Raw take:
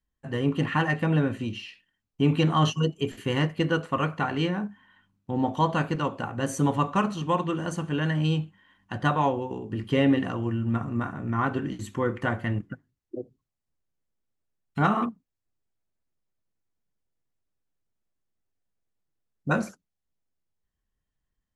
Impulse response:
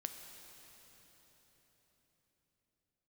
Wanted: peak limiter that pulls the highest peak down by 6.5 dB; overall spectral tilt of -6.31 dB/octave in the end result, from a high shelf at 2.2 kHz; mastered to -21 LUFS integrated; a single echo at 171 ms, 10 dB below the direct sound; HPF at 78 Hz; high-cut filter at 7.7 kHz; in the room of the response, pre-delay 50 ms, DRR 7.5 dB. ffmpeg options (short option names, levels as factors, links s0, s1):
-filter_complex "[0:a]highpass=78,lowpass=7700,highshelf=f=2200:g=-5,alimiter=limit=0.158:level=0:latency=1,aecho=1:1:171:0.316,asplit=2[s0][s1];[1:a]atrim=start_sample=2205,adelay=50[s2];[s1][s2]afir=irnorm=-1:irlink=0,volume=0.531[s3];[s0][s3]amix=inputs=2:normalize=0,volume=2.24"